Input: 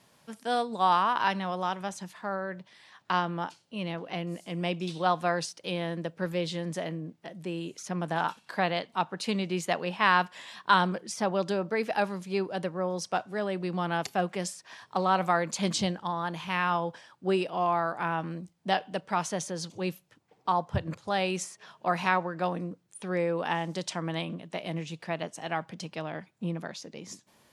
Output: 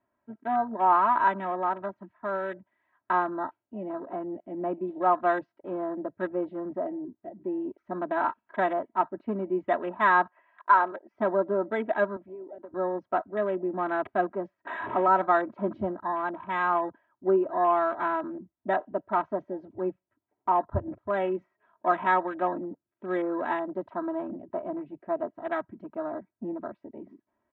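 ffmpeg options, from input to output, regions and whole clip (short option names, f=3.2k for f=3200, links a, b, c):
-filter_complex "[0:a]asettb=1/sr,asplit=3[a][b][c];[a]atrim=end=10.294[d];[b]atrim=start=10.29:end=11.14,asetpts=PTS-STARTPTS,afade=t=in:d=0.004:c=qsin,afade=t=out:st=0.846:d=0.004:c=qsin,highpass=480,lowpass=6.5k,equalizer=f=3.7k:w=4.2:g=-12.5,asoftclip=type=hard:threshold=-13dB[e];[c]atrim=start=11.136[f];[d][e]acrossfade=d=0.004:c1=hsin:c2=qsin[g];[g][f]acrossfade=d=0.004:c1=qsin:c2=hsin,asettb=1/sr,asplit=3[h][i][j];[h]atrim=end=12.164[k];[i]atrim=start=12.16:end=12.74,asetpts=PTS-STARTPTS,afade=t=in:d=0.004:c=qsin,afade=t=out:st=0.576:d=0.004:c=qsin,highpass=270,acompressor=threshold=-40dB:ratio=12:attack=3.2:release=140:knee=1:detection=peak[l];[j]atrim=start=12.736[m];[k][l]acrossfade=d=0.004:c1=hsin:c2=qsin[n];[n][m]acrossfade=d=0.004:c1=qsin:c2=hsin,asettb=1/sr,asplit=3[o][p][q];[o]atrim=end=14.654[r];[p]atrim=start=14.65:end=15.08,asetpts=PTS-STARTPTS,afade=t=in:d=0.004:c=qsin,afade=t=out:st=0.426:d=0.004:c=qsin,aeval=exprs='val(0)+0.5*0.0376*sgn(val(0))':c=same,highpass=f=180:p=1,highshelf=f=4.1k:g=-10[s];[q]atrim=start=15.076[t];[r][s]acrossfade=d=0.004:c1=hsin:c2=qsin[u];[u][t]acrossfade=d=0.004:c1=qsin:c2=hsin,lowpass=f=1.8k:w=0.5412,lowpass=f=1.8k:w=1.3066,afwtdn=0.01,aecho=1:1:3.1:1"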